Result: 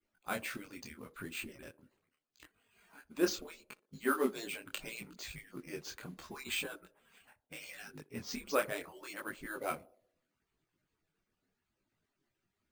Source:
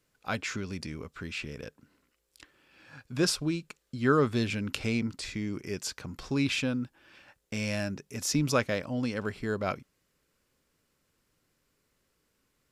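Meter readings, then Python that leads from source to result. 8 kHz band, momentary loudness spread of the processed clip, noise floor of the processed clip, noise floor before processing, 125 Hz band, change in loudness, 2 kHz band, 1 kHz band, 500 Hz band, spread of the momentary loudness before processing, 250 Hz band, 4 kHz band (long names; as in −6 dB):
−8.5 dB, 15 LU, below −85 dBFS, −76 dBFS, −20.5 dB, −8.5 dB, −6.0 dB, −5.5 dB, −6.5 dB, 14 LU, −11.5 dB, −8.5 dB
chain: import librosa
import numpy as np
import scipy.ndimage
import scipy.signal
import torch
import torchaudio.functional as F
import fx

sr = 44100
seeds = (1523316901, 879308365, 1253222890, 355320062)

p1 = fx.hpss_only(x, sr, part='percussive')
p2 = fx.mod_noise(p1, sr, seeds[0], snr_db=20)
p3 = fx.air_absorb(p2, sr, metres=54.0)
p4 = p3 + fx.echo_banded(p3, sr, ms=61, feedback_pct=61, hz=450.0, wet_db=-17.5, dry=0)
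p5 = np.repeat(scipy.signal.resample_poly(p4, 1, 4), 4)[:len(p4)]
y = fx.detune_double(p5, sr, cents=26)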